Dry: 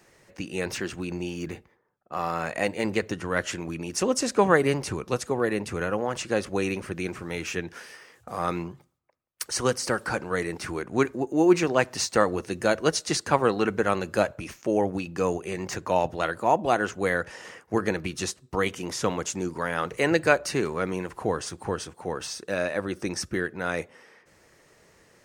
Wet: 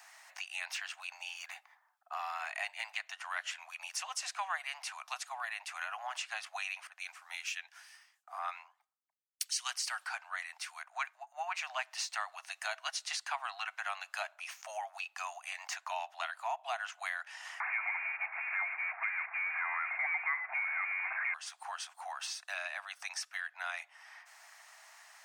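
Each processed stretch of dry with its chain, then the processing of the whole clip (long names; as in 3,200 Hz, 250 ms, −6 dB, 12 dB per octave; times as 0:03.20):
0:06.87–0:11.55: low-shelf EQ 310 Hz −11.5 dB + multiband upward and downward expander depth 100%
0:17.60–0:21.34: converter with a step at zero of −19 dBFS + high-pass filter 560 Hz 6 dB per octave + voice inversion scrambler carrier 2,600 Hz
whole clip: Butterworth high-pass 670 Hz 96 dB per octave; dynamic equaliser 2,800 Hz, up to +8 dB, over −45 dBFS, Q 0.95; downward compressor 2.5 to 1, threshold −48 dBFS; level +4 dB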